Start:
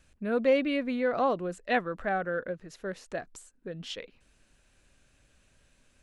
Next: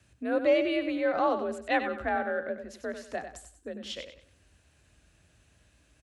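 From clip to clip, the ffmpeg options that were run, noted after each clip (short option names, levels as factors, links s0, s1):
-af "aecho=1:1:95|190|285|380:0.355|0.11|0.0341|0.0106,afreqshift=46"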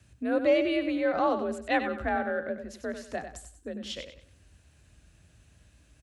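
-af "bass=f=250:g=6,treble=f=4000:g=2"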